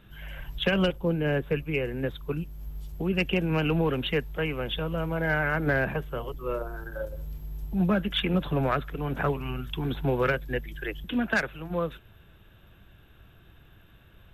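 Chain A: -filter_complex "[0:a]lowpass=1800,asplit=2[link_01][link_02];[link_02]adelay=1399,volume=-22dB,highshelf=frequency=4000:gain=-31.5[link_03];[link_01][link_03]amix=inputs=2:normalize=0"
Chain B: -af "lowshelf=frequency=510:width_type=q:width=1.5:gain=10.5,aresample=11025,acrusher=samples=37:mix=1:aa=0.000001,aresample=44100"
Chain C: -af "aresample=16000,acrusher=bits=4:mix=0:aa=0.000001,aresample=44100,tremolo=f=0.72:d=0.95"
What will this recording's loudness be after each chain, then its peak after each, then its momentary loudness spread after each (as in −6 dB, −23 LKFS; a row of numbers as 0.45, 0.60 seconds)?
−29.5, −20.5, −31.0 LKFS; −14.0, −3.5, −13.5 dBFS; 11, 12, 17 LU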